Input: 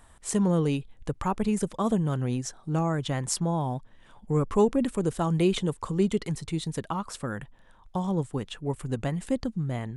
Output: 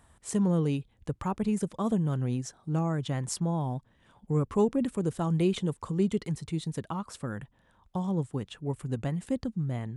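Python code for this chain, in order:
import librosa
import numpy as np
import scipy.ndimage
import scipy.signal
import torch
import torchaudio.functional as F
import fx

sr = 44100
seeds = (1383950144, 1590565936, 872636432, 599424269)

y = scipy.signal.sosfilt(scipy.signal.butter(2, 59.0, 'highpass', fs=sr, output='sos'), x)
y = fx.low_shelf(y, sr, hz=280.0, db=6.0)
y = y * 10.0 ** (-5.5 / 20.0)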